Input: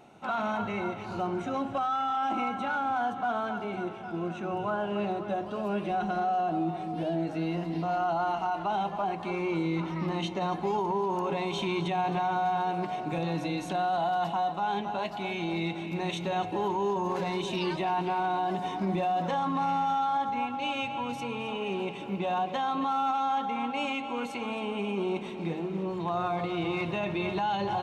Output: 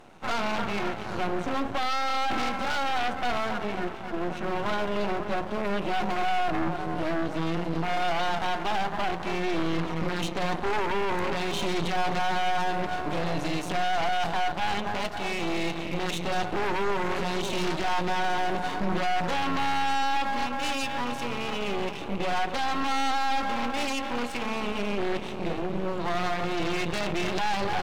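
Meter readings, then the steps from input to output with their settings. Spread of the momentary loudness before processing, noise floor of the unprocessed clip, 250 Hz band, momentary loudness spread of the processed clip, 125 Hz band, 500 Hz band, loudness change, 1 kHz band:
5 LU, -38 dBFS, +0.5 dB, 4 LU, +0.5 dB, +1.5 dB, +1.5 dB, +0.5 dB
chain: Chebyshev shaper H 4 -6 dB, 6 -10 dB, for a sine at -18 dBFS; half-wave rectifier; trim +6.5 dB

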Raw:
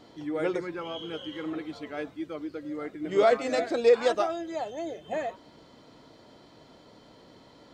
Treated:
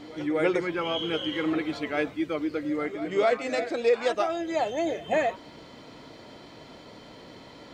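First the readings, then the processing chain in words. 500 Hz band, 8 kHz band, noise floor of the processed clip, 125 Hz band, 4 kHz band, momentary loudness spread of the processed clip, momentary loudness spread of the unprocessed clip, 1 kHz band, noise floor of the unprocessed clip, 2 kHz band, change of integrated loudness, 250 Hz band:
+0.5 dB, no reading, -48 dBFS, +5.0 dB, +6.0 dB, 22 LU, 14 LU, +2.0 dB, -55 dBFS, +5.0 dB, +1.5 dB, +5.0 dB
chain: pre-echo 252 ms -20 dB; gain riding within 5 dB 0.5 s; peaking EQ 2.3 kHz +5.5 dB 0.69 oct; trim +2 dB

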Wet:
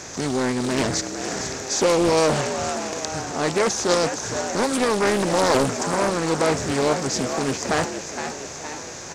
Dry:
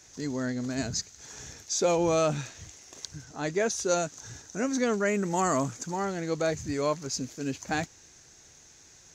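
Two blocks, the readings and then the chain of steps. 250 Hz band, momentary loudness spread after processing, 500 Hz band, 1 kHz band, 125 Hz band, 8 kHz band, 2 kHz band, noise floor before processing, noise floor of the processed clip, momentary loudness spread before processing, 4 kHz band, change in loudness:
+7.0 dB, 9 LU, +8.0 dB, +9.0 dB, +6.0 dB, +8.0 dB, +9.0 dB, -55 dBFS, -35 dBFS, 16 LU, +11.0 dB, +7.0 dB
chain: spectral levelling over time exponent 0.6; frequency-shifting echo 465 ms, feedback 55%, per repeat +71 Hz, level -8.5 dB; loudspeaker Doppler distortion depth 0.57 ms; trim +4 dB

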